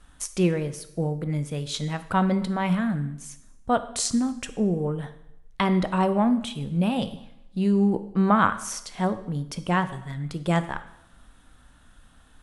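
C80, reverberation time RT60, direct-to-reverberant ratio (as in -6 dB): 16.0 dB, 0.80 s, 11.0 dB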